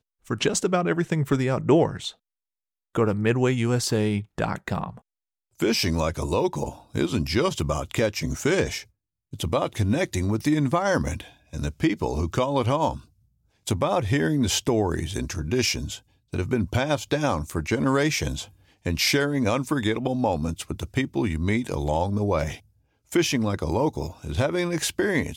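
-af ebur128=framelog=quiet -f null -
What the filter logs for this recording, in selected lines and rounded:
Integrated loudness:
  I:         -25.0 LUFS
  Threshold: -35.3 LUFS
Loudness range:
  LRA:         1.9 LU
  Threshold: -45.5 LUFS
  LRA low:   -26.4 LUFS
  LRA high:  -24.5 LUFS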